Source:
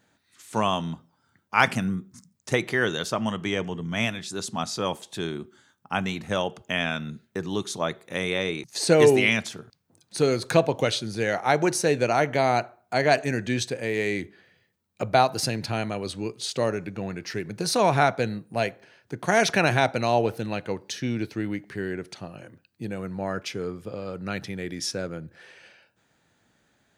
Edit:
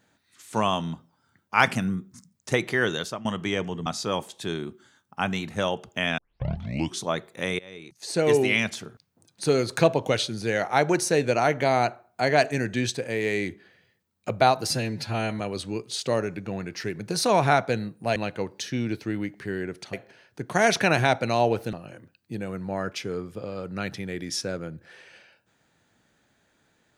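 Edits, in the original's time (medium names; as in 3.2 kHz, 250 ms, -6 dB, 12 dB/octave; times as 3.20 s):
2.97–3.25 s: fade out, to -16 dB
3.86–4.59 s: delete
6.91 s: tape start 0.83 s
8.32–9.51 s: fade in, from -24 dB
15.44–15.90 s: stretch 1.5×
20.46–22.23 s: move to 18.66 s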